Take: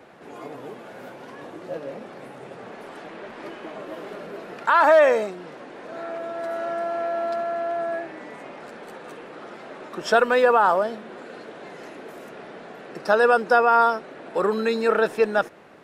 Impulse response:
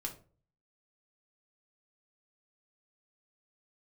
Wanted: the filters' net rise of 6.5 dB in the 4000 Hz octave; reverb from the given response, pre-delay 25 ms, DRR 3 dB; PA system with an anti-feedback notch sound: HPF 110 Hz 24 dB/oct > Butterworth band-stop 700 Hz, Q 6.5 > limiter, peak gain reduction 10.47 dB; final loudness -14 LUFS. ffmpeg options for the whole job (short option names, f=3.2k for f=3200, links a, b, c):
-filter_complex "[0:a]equalizer=f=4k:t=o:g=8,asplit=2[a][b];[1:a]atrim=start_sample=2205,adelay=25[c];[b][c]afir=irnorm=-1:irlink=0,volume=-2.5dB[d];[a][d]amix=inputs=2:normalize=0,highpass=f=110:w=0.5412,highpass=f=110:w=1.3066,asuperstop=centerf=700:order=8:qfactor=6.5,volume=11dB,alimiter=limit=-1dB:level=0:latency=1"